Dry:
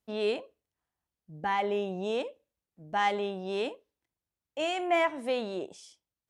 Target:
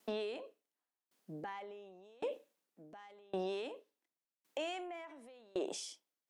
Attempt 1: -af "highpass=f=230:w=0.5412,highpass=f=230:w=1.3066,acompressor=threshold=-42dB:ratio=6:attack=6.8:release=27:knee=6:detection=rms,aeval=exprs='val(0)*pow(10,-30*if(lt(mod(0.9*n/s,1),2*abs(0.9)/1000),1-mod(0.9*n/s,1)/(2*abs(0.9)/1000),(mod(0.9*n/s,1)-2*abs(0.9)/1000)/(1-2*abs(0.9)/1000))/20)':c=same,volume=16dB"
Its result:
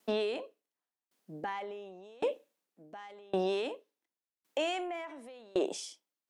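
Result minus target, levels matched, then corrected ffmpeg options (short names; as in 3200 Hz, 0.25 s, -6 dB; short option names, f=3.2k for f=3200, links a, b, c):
compressor: peak gain reduction -7.5 dB
-af "highpass=f=230:w=0.5412,highpass=f=230:w=1.3066,acompressor=threshold=-51dB:ratio=6:attack=6.8:release=27:knee=6:detection=rms,aeval=exprs='val(0)*pow(10,-30*if(lt(mod(0.9*n/s,1),2*abs(0.9)/1000),1-mod(0.9*n/s,1)/(2*abs(0.9)/1000),(mod(0.9*n/s,1)-2*abs(0.9)/1000)/(1-2*abs(0.9)/1000))/20)':c=same,volume=16dB"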